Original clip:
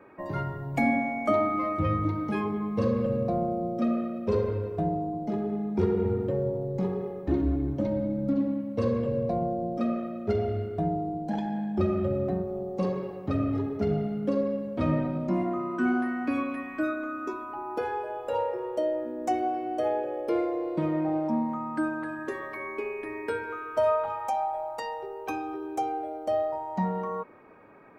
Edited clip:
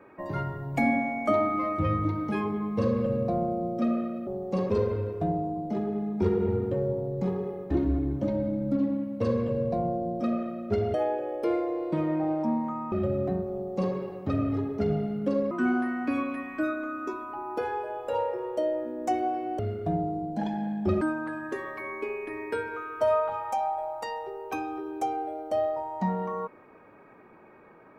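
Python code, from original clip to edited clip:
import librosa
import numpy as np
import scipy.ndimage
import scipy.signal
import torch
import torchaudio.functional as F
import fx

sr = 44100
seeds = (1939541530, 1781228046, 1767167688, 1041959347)

y = fx.edit(x, sr, fx.swap(start_s=10.51, length_s=1.42, other_s=19.79, other_length_s=1.98),
    fx.duplicate(start_s=12.53, length_s=0.43, to_s=4.27),
    fx.cut(start_s=14.52, length_s=1.19), tone=tone)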